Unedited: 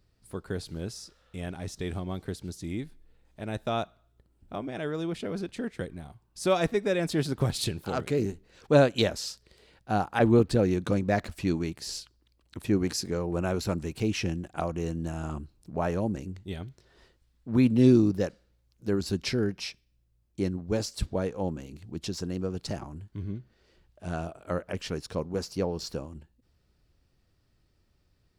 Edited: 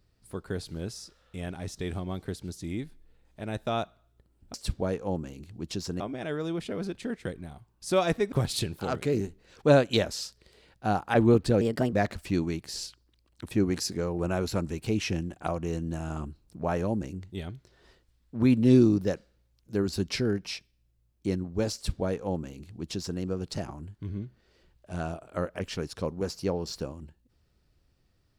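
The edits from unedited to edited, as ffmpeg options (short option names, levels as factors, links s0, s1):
-filter_complex "[0:a]asplit=6[s0][s1][s2][s3][s4][s5];[s0]atrim=end=4.542[s6];[s1]atrim=start=20.868:end=22.332[s7];[s2]atrim=start=4.538:end=6.862[s8];[s3]atrim=start=7.368:end=10.664[s9];[s4]atrim=start=10.66:end=11.06,asetpts=PTS-STARTPTS,asetrate=55566,aresample=44100[s10];[s5]atrim=start=11.056[s11];[s6][s7]acrossfade=d=0.004:c1=hsin:c2=hsin[s12];[s12][s8]acrossfade=d=0.004:c1=hsin:c2=hsin[s13];[s13][s9]acrossfade=d=0.004:c1=hsin:c2=hsin[s14];[s14][s10]acrossfade=d=0.004:c1=hsin:c2=hsin[s15];[s15][s11]acrossfade=d=0.004:c1=hsin:c2=hsin"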